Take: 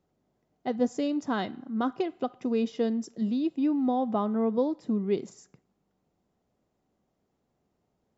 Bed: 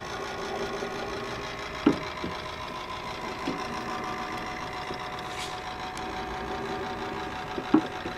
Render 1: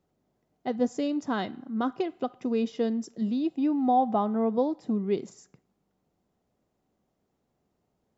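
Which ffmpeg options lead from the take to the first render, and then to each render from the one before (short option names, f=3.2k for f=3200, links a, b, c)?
-filter_complex "[0:a]asettb=1/sr,asplit=3[a][b][c];[a]atrim=end=3.374[d];[b]atrim=start=3.37:end=4.95,asetpts=PTS-STARTPTS,afade=t=in:d=0.004:c=qsin,afade=t=out:st=1.576:d=0.004:c=qsin,equalizer=f=760:w=5.5:g=9[e];[c]atrim=start=4.946[f];[d][e]acrossfade=d=0.004:c1=hsin:c2=qsin[g];[g][f]acrossfade=d=0.004:c1=qsin:c2=hsin"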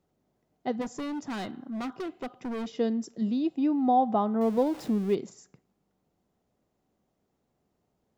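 -filter_complex "[0:a]asplit=3[a][b][c];[a]afade=t=out:st=0.8:d=0.02[d];[b]asoftclip=type=hard:threshold=-31.5dB,afade=t=in:st=0.8:d=0.02,afade=t=out:st=2.66:d=0.02[e];[c]afade=t=in:st=2.66:d=0.02[f];[d][e][f]amix=inputs=3:normalize=0,asettb=1/sr,asplit=3[g][h][i];[g]atrim=end=4.414[j];[h]atrim=start=4.41:end=5.15,asetpts=PTS-STARTPTS,afade=t=in:d=0.004:c=qsin,afade=t=out:st=0.736:d=0.004:c=qsin,aeval=exprs='val(0)+0.5*0.0106*sgn(val(0))':c=same[k];[i]atrim=start=5.146[l];[j][k]acrossfade=d=0.004:c1=hsin:c2=qsin[m];[m][l]acrossfade=d=0.004:c1=qsin:c2=hsin"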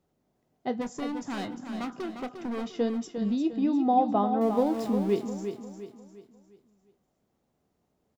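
-filter_complex "[0:a]asplit=2[a][b];[b]adelay=25,volume=-13dB[c];[a][c]amix=inputs=2:normalize=0,aecho=1:1:352|704|1056|1408|1760:0.398|0.159|0.0637|0.0255|0.0102"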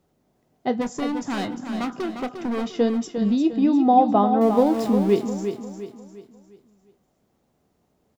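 -af "volume=7dB"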